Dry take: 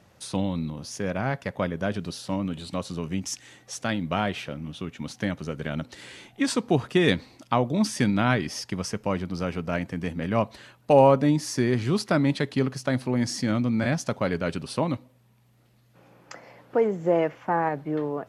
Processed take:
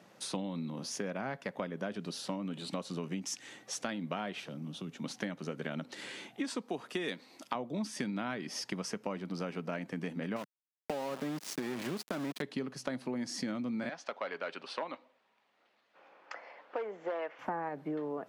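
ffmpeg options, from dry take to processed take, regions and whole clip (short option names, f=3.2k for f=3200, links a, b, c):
-filter_complex "[0:a]asettb=1/sr,asplit=3[a][b][c];[a]atrim=end=4.404[d];[b]atrim=start=4.4:end=5.04,asetpts=PTS-STARTPTS,afade=t=in:d=0.004:c=qsin,afade=t=out:st=0.636:d=0.004:c=qsin,highpass=57,equalizer=f=2.2k:w=1.2:g=-7.5,acrossover=split=180|3000[e][f][g];[f]acompressor=threshold=-42dB:ratio=6:attack=3.2:release=140:knee=2.83:detection=peak[h];[e][h][g]amix=inputs=3:normalize=0[i];[c]atrim=start=5.036[j];[d][i]acrossfade=d=0.004:c1=hsin:c2=qsin[k];[k][j]acrossfade=d=0.004:c1=qsin:c2=hsin,asettb=1/sr,asplit=3[l][m][n];[l]atrim=end=6.614[o];[m]atrim=start=6.61:end=7.55,asetpts=PTS-STARTPTS,afade=t=in:d=0.004:c=qsin,afade=t=out:st=0.936:d=0.004:c=qsin,highpass=f=330:p=1,highshelf=f=8.5k:g=8[p];[n]atrim=start=7.546[q];[o][p]acrossfade=d=0.004:c1=hsin:c2=qsin[r];[r][q]acrossfade=d=0.004:c1=qsin:c2=hsin,asettb=1/sr,asplit=3[s][t][u];[s]atrim=end=10.364[v];[t]atrim=start=10.36:end=12.42,asetpts=PTS-STARTPTS,afade=t=in:d=0.004:c=qsin,afade=t=out:st=2.056:d=0.004:c=qsin,acompressor=threshold=-22dB:ratio=6:attack=3.2:release=140:knee=1:detection=peak,aeval=exprs='val(0)*gte(abs(val(0)),0.0355)':c=same[w];[u]atrim=start=12.416[x];[v][w]acrossfade=d=0.004:c1=hsin:c2=qsin[y];[y][x]acrossfade=d=0.004:c1=qsin:c2=hsin,asettb=1/sr,asplit=3[z][aa][ab];[z]atrim=end=13.894[ac];[aa]atrim=start=13.89:end=17.39,asetpts=PTS-STARTPTS,afade=t=in:d=0.004:c=qsin,afade=t=out:st=3.496:d=0.004:c=qsin,volume=16.5dB,asoftclip=hard,volume=-16.5dB,highpass=640,lowpass=3.6k[ad];[ab]atrim=start=17.386[ae];[ac][ad]acrossfade=d=0.004:c1=hsin:c2=qsin[af];[af][ae]acrossfade=d=0.004:c1=qsin:c2=hsin,highpass=f=170:w=0.5412,highpass=f=170:w=1.3066,highshelf=f=7.3k:g=-4.5,acompressor=threshold=-34dB:ratio=6"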